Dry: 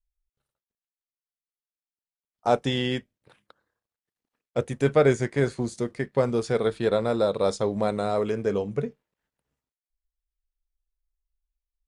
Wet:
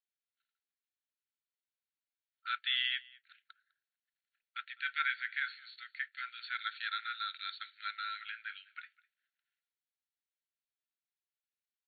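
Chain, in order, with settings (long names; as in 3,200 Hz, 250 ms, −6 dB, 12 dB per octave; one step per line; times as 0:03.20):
linear-phase brick-wall band-pass 1,300–4,500 Hz
single-tap delay 203 ms −23.5 dB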